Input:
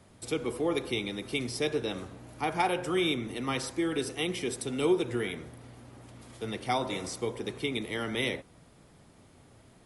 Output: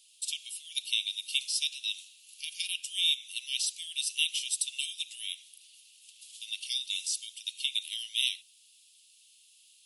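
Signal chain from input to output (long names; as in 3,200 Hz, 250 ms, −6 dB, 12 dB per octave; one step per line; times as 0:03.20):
Chebyshev high-pass filter 2,700 Hz, order 6
level +8.5 dB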